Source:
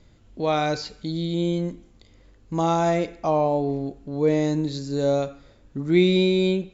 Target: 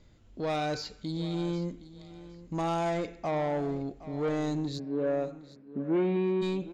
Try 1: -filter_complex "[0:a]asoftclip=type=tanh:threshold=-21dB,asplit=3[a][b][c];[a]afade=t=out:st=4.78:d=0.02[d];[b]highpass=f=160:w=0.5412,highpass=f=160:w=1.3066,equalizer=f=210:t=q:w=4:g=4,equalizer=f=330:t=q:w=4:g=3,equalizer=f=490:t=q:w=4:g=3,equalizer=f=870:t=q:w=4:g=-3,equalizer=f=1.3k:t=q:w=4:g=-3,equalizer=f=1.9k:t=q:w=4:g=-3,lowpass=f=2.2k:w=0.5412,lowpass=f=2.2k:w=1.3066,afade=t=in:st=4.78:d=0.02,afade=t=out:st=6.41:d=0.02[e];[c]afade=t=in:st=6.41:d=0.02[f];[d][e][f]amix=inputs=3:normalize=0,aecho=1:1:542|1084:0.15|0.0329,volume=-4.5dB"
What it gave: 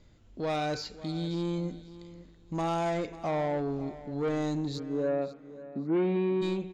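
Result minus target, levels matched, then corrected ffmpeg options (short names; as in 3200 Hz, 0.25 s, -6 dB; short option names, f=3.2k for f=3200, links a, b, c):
echo 0.224 s early
-filter_complex "[0:a]asoftclip=type=tanh:threshold=-21dB,asplit=3[a][b][c];[a]afade=t=out:st=4.78:d=0.02[d];[b]highpass=f=160:w=0.5412,highpass=f=160:w=1.3066,equalizer=f=210:t=q:w=4:g=4,equalizer=f=330:t=q:w=4:g=3,equalizer=f=490:t=q:w=4:g=3,equalizer=f=870:t=q:w=4:g=-3,equalizer=f=1.3k:t=q:w=4:g=-3,equalizer=f=1.9k:t=q:w=4:g=-3,lowpass=f=2.2k:w=0.5412,lowpass=f=2.2k:w=1.3066,afade=t=in:st=4.78:d=0.02,afade=t=out:st=6.41:d=0.02[e];[c]afade=t=in:st=6.41:d=0.02[f];[d][e][f]amix=inputs=3:normalize=0,aecho=1:1:766|1532:0.15|0.0329,volume=-4.5dB"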